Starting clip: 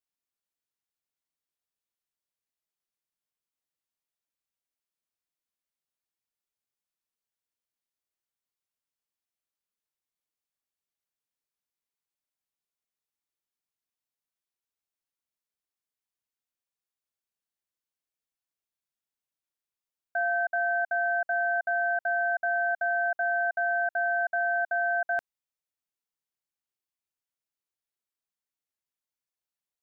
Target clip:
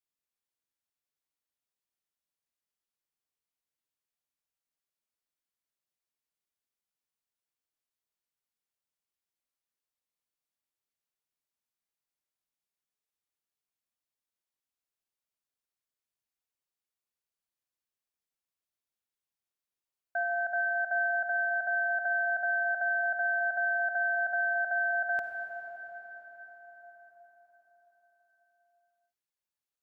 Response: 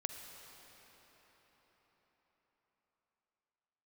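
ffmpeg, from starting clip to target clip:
-filter_complex "[1:a]atrim=start_sample=2205,asetrate=42336,aresample=44100[a];[0:a][a]afir=irnorm=-1:irlink=0,volume=-1.5dB"

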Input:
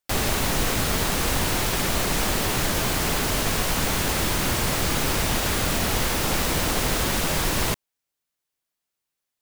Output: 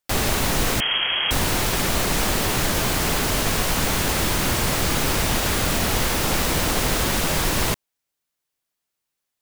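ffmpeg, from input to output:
-filter_complex "[0:a]asettb=1/sr,asplit=3[a][b][c];[a]atrim=end=0.804[d];[b]atrim=start=0.8:end=1.31,asetpts=PTS-STARTPTS,afade=t=in:d=0.004:c=qsin,afade=t=out:st=0.506:d=0.004:c=qsin,lowpass=f=2.8k:t=q:w=0.5098,lowpass=f=2.8k:t=q:w=0.6013,lowpass=f=2.8k:t=q:w=0.9,lowpass=f=2.8k:t=q:w=2.563,afreqshift=-3300[e];[c]atrim=start=1.306[f];[d][e]acrossfade=d=0.004:c1=hsin:c2=qsin[g];[g][f]acrossfade=d=0.004:c1=qsin:c2=hsin,volume=2dB"

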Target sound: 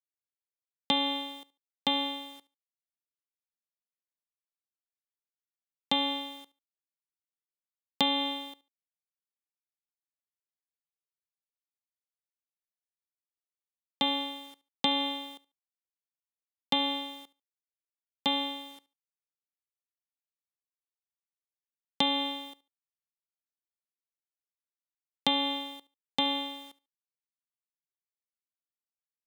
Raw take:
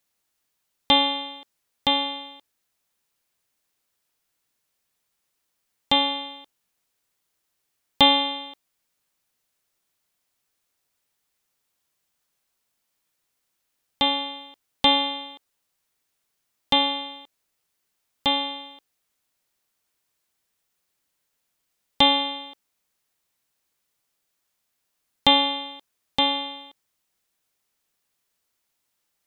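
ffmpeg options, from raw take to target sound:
-filter_complex "[0:a]acrusher=bits=7:mix=0:aa=0.5,bass=f=250:g=9,treble=f=4k:g=2,asplit=2[a][b];[b]aecho=0:1:72|144:0.0841|0.0168[c];[a][c]amix=inputs=2:normalize=0,acompressor=threshold=-18dB:ratio=5,highpass=f=190:w=0.5412,highpass=f=190:w=1.3066,volume=-5dB"

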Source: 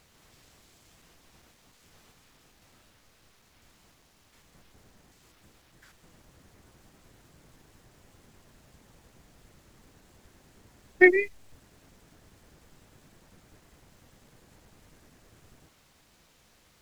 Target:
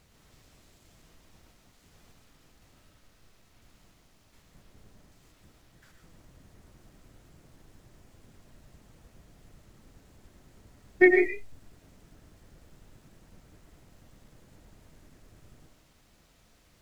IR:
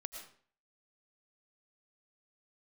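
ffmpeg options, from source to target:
-filter_complex "[0:a]lowshelf=f=340:g=7[a];[1:a]atrim=start_sample=2205,afade=t=out:st=0.22:d=0.01,atrim=end_sample=10143[b];[a][b]afir=irnorm=-1:irlink=0"

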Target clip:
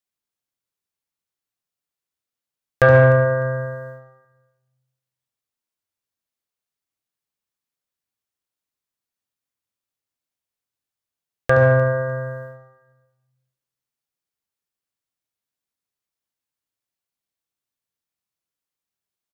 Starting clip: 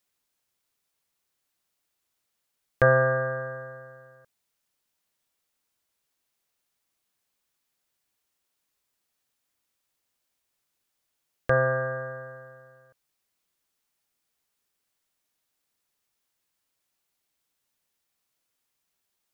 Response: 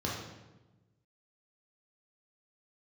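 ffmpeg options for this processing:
-filter_complex "[0:a]agate=range=-17dB:threshold=-46dB:ratio=16:detection=peak,aecho=1:1:302|604:0.0708|0.0156,asplit=2[a][b];[1:a]atrim=start_sample=2205,adelay=71[c];[b][c]afir=irnorm=-1:irlink=0,volume=-13dB[d];[a][d]amix=inputs=2:normalize=0,acontrast=78"

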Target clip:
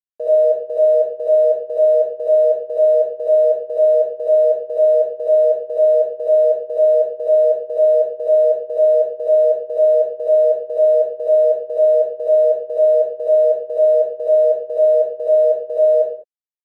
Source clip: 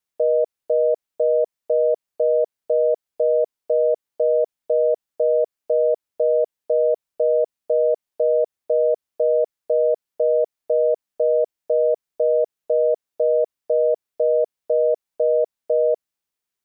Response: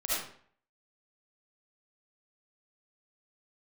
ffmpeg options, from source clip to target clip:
-filter_complex "[0:a]aeval=exprs='sgn(val(0))*max(abs(val(0))-0.00282,0)':c=same[a];[1:a]atrim=start_sample=2205,afade=t=out:st=0.33:d=0.01,atrim=end_sample=14994,asetrate=42336,aresample=44100[b];[a][b]afir=irnorm=-1:irlink=0,volume=-3.5dB"

